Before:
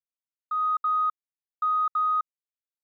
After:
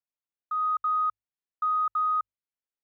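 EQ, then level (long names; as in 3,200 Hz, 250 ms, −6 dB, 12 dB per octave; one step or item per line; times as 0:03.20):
high-frequency loss of the air 230 metres
mains-hum notches 50/100 Hz
0.0 dB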